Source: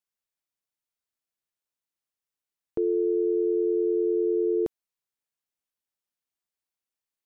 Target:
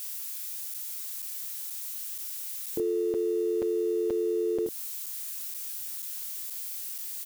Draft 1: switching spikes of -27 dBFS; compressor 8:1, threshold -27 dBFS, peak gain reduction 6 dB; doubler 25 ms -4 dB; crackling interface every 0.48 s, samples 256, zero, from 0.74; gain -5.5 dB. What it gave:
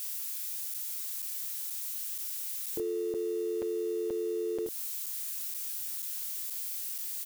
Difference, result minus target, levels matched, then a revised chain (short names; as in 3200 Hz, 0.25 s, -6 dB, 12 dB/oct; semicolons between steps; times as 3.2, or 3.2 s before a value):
250 Hz band -3.5 dB
switching spikes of -27 dBFS; compressor 8:1, threshold -27 dBFS, peak gain reduction 6 dB; bell 230 Hz +6.5 dB 2.7 oct; doubler 25 ms -4 dB; crackling interface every 0.48 s, samples 256, zero, from 0.74; gain -5.5 dB